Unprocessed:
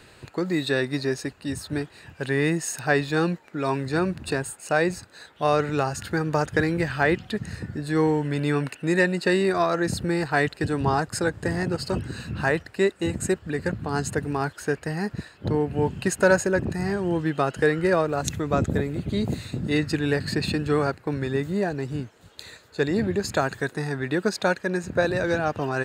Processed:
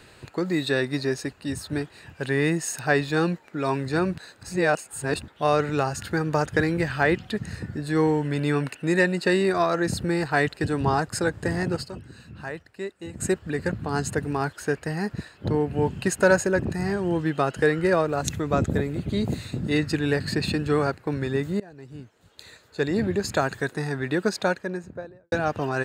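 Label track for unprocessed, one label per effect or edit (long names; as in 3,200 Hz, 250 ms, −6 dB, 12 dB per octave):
4.180000	5.280000	reverse
11.810000	13.210000	duck −11.5 dB, fades 0.30 s exponential
21.600000	23.050000	fade in, from −23.5 dB
24.280000	25.320000	fade out and dull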